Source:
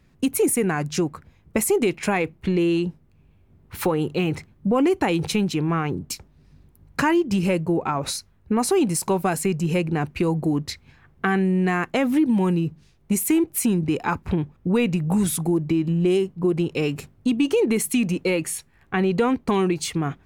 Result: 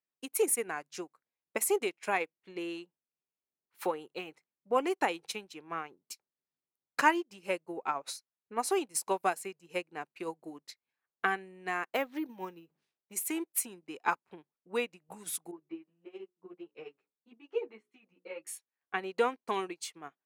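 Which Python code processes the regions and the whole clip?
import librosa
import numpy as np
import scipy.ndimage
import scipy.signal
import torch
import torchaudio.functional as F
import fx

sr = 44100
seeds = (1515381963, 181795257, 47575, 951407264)

y = fx.chain(x, sr, fx.resample_bad(factor=3, down='none', up='hold'),
    fx.high_shelf(hz=5600.0, db=-8.5),
    fx.sustainer(db_per_s=95.0), at=(11.89, 13.13))
y = fx.chain(y, sr, fx.lowpass(hz=2200.0, slope=12),
    fx.hum_notches(base_hz=60, count=9),
    fx.ensemble(), at=(15.51, 18.47))
y = scipy.signal.sosfilt(scipy.signal.butter(2, 490.0, 'highpass', fs=sr, output='sos'), y)
y = fx.upward_expand(y, sr, threshold_db=-41.0, expansion=2.5)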